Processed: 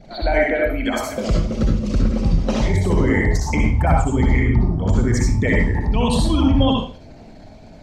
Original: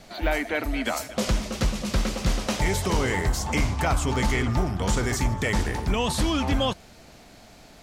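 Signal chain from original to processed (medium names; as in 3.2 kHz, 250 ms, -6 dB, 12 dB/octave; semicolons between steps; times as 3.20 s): resonances exaggerated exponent 2; 0.56–1.27 s: compression, threshold -26 dBFS, peak gain reduction 5.5 dB; reverberation RT60 0.40 s, pre-delay 57 ms, DRR -1 dB; trim +4.5 dB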